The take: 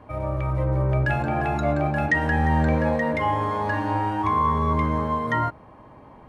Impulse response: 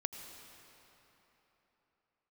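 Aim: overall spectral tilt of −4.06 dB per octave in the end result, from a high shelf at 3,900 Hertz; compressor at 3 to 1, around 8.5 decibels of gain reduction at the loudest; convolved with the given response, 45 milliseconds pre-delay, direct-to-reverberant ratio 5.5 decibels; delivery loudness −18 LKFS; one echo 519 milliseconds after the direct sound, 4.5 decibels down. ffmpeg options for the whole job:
-filter_complex "[0:a]highshelf=frequency=3900:gain=-3,acompressor=threshold=-29dB:ratio=3,aecho=1:1:519:0.596,asplit=2[link_01][link_02];[1:a]atrim=start_sample=2205,adelay=45[link_03];[link_02][link_03]afir=irnorm=-1:irlink=0,volume=-5.5dB[link_04];[link_01][link_04]amix=inputs=2:normalize=0,volume=10.5dB"

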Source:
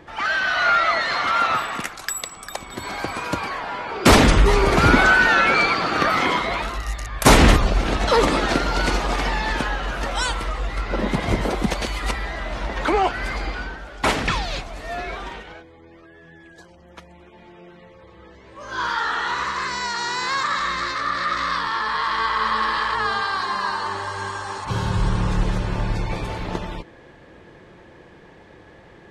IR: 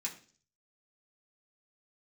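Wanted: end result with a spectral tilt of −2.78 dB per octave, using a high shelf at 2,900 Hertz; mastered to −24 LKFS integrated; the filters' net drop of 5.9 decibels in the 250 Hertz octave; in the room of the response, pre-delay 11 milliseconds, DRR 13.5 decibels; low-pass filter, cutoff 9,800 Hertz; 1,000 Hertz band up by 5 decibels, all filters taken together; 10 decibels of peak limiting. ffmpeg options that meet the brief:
-filter_complex "[0:a]lowpass=9800,equalizer=frequency=250:width_type=o:gain=-8.5,equalizer=frequency=1000:width_type=o:gain=8,highshelf=frequency=2900:gain=-8.5,alimiter=limit=-8.5dB:level=0:latency=1,asplit=2[link_01][link_02];[1:a]atrim=start_sample=2205,adelay=11[link_03];[link_02][link_03]afir=irnorm=-1:irlink=0,volume=-14dB[link_04];[link_01][link_04]amix=inputs=2:normalize=0,volume=-3.5dB"

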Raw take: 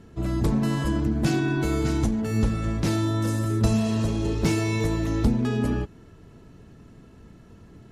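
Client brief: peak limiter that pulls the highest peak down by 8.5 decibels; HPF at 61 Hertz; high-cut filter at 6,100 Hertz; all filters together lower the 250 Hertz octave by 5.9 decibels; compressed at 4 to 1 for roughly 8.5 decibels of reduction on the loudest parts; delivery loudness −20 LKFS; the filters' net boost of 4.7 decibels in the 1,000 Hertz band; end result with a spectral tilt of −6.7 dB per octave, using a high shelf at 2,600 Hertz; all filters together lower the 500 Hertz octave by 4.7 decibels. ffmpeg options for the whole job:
ffmpeg -i in.wav -af "highpass=61,lowpass=6100,equalizer=frequency=250:width_type=o:gain=-6.5,equalizer=frequency=500:width_type=o:gain=-6,equalizer=frequency=1000:width_type=o:gain=9,highshelf=frequency=2600:gain=-6.5,acompressor=threshold=-30dB:ratio=4,volume=18dB,alimiter=limit=-11.5dB:level=0:latency=1" out.wav

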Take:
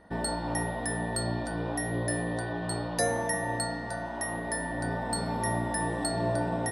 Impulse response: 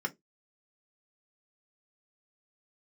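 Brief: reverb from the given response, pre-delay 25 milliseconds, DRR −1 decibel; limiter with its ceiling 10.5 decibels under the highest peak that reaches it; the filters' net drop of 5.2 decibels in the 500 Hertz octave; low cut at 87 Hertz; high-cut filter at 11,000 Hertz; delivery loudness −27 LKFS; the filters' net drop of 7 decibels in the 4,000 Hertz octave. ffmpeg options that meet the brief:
-filter_complex "[0:a]highpass=87,lowpass=11000,equalizer=frequency=500:width_type=o:gain=-7,equalizer=frequency=4000:width_type=o:gain=-8,alimiter=level_in=5dB:limit=-24dB:level=0:latency=1,volume=-5dB,asplit=2[link_01][link_02];[1:a]atrim=start_sample=2205,adelay=25[link_03];[link_02][link_03]afir=irnorm=-1:irlink=0,volume=-3.5dB[link_04];[link_01][link_04]amix=inputs=2:normalize=0,volume=7.5dB"

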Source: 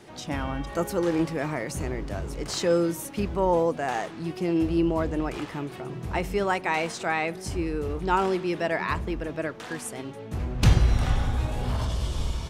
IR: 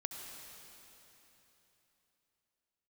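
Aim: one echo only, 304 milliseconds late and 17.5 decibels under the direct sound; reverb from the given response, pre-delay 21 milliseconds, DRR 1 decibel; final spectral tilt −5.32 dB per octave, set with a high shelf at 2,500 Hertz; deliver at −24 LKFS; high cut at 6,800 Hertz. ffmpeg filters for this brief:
-filter_complex "[0:a]lowpass=6800,highshelf=frequency=2500:gain=6.5,aecho=1:1:304:0.133,asplit=2[link_01][link_02];[1:a]atrim=start_sample=2205,adelay=21[link_03];[link_02][link_03]afir=irnorm=-1:irlink=0,volume=-0.5dB[link_04];[link_01][link_04]amix=inputs=2:normalize=0"

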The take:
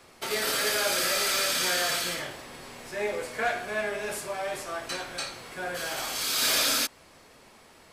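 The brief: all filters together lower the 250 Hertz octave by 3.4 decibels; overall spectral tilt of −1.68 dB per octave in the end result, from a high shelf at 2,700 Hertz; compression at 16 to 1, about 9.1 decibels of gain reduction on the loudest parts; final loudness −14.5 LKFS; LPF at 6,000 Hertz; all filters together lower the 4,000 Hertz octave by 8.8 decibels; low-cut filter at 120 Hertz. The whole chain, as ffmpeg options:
ffmpeg -i in.wav -af "highpass=120,lowpass=6000,equalizer=frequency=250:width_type=o:gain=-4.5,highshelf=frequency=2700:gain=-3,equalizer=frequency=4000:width_type=o:gain=-7.5,acompressor=threshold=-33dB:ratio=16,volume=23dB" out.wav

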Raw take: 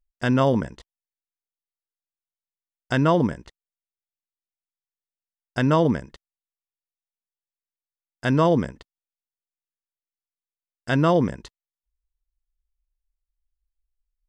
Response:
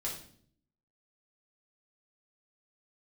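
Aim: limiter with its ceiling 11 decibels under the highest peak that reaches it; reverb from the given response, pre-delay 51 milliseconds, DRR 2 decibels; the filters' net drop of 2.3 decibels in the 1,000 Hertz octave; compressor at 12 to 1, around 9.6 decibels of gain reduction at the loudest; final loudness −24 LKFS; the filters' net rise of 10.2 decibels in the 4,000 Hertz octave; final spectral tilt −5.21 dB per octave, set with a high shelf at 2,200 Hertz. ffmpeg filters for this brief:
-filter_complex "[0:a]equalizer=frequency=1000:width_type=o:gain=-4.5,highshelf=frequency=2200:gain=5.5,equalizer=frequency=4000:width_type=o:gain=8.5,acompressor=threshold=-24dB:ratio=12,alimiter=limit=-21.5dB:level=0:latency=1,asplit=2[link_01][link_02];[1:a]atrim=start_sample=2205,adelay=51[link_03];[link_02][link_03]afir=irnorm=-1:irlink=0,volume=-3.5dB[link_04];[link_01][link_04]amix=inputs=2:normalize=0,volume=7dB"

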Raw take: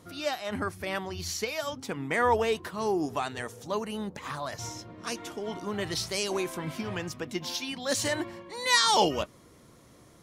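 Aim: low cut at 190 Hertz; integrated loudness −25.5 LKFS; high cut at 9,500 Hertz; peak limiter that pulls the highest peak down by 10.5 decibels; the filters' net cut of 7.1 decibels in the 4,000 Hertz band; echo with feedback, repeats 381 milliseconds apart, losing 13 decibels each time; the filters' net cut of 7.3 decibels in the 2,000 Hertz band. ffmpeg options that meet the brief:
ffmpeg -i in.wav -af "highpass=190,lowpass=9500,equalizer=frequency=2000:width_type=o:gain=-7,equalizer=frequency=4000:width_type=o:gain=-7,alimiter=limit=-23dB:level=0:latency=1,aecho=1:1:381|762|1143:0.224|0.0493|0.0108,volume=10dB" out.wav

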